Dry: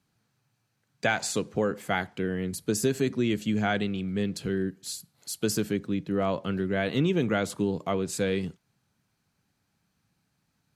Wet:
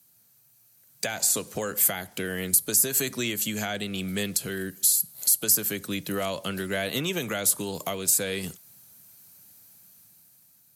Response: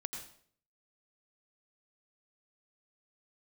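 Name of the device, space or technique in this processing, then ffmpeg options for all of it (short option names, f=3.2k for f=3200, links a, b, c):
FM broadcast chain: -filter_complex "[0:a]highpass=71,equalizer=f=600:t=o:w=0.4:g=5,dynaudnorm=f=470:g=5:m=8dB,acrossover=split=81|680|1900[a][b][c][d];[a]acompressor=threshold=-47dB:ratio=4[e];[b]acompressor=threshold=-31dB:ratio=4[f];[c]acompressor=threshold=-33dB:ratio=4[g];[d]acompressor=threshold=-35dB:ratio=4[h];[e][f][g][h]amix=inputs=4:normalize=0,aemphasis=mode=production:type=50fm,alimiter=limit=-19dB:level=0:latency=1:release=415,asoftclip=type=hard:threshold=-20dB,lowpass=f=15k:w=0.5412,lowpass=f=15k:w=1.3066,aemphasis=mode=production:type=50fm"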